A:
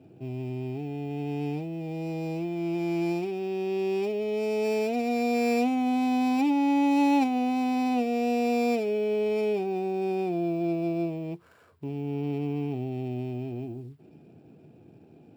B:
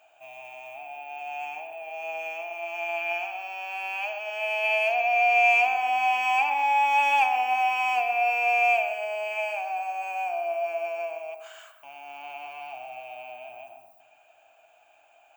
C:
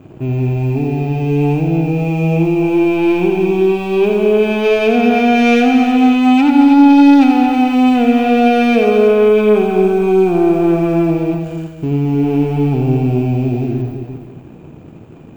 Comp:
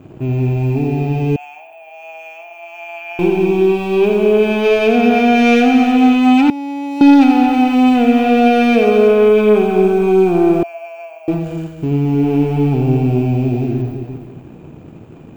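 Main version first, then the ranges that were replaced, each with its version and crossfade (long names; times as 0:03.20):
C
0:01.36–0:03.19: punch in from B
0:06.50–0:07.01: punch in from A
0:10.63–0:11.28: punch in from B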